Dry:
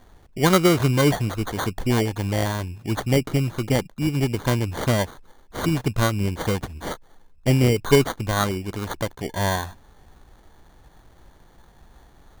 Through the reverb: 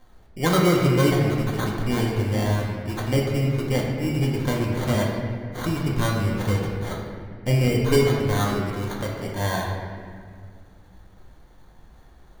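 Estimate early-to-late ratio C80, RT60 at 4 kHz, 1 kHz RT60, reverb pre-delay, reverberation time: 2.5 dB, 1.3 s, 1.7 s, 4 ms, 1.9 s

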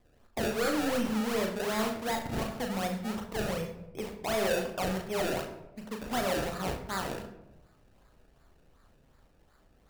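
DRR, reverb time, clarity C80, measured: 2.5 dB, 0.95 s, 11.0 dB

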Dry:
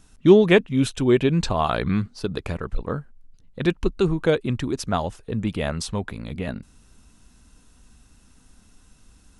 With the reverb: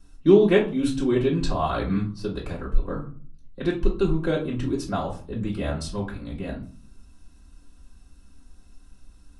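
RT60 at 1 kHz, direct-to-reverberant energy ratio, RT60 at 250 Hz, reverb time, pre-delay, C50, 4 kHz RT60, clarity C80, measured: 0.40 s, -6.5 dB, 0.75 s, 0.45 s, 3 ms, 9.5 dB, 0.30 s, 14.5 dB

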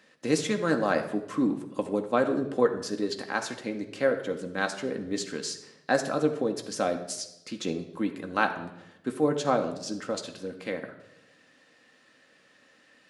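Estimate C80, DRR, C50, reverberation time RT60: 13.0 dB, 3.5 dB, 10.0 dB, 0.85 s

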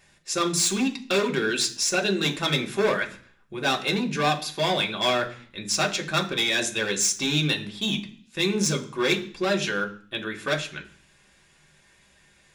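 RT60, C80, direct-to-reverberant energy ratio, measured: 0.45 s, 17.5 dB, 0.5 dB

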